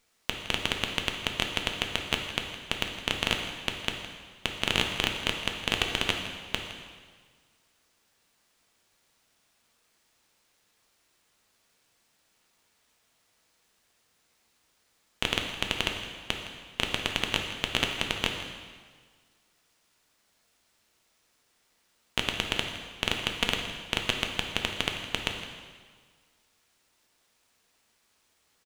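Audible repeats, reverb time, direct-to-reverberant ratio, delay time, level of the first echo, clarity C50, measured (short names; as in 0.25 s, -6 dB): 1, 1.6 s, 2.0 dB, 0.163 s, -15.0 dB, 4.5 dB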